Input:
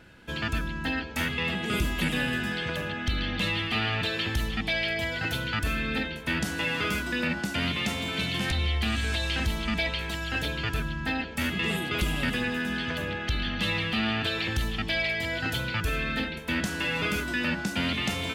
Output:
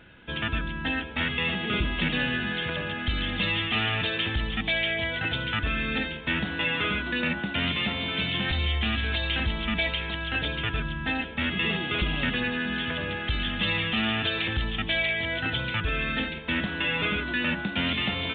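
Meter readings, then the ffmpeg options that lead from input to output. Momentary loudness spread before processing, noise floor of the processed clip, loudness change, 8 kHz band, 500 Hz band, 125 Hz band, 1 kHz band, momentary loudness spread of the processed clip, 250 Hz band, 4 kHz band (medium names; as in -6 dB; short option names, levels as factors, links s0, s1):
4 LU, -35 dBFS, +1.5 dB, under -40 dB, 0.0 dB, 0.0 dB, +0.5 dB, 4 LU, 0.0 dB, +2.5 dB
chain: -af "crystalizer=i=2:c=0" -ar 8000 -c:a pcm_mulaw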